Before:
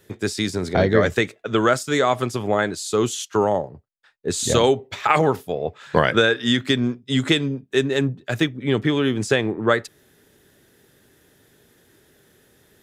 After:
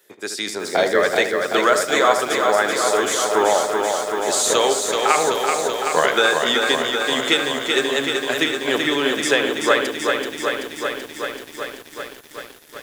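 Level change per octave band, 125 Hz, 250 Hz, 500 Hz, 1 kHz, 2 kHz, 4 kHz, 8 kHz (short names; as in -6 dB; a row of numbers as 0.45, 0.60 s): -16.0, -4.0, +2.5, +5.0, +5.0, +5.5, +7.5 dB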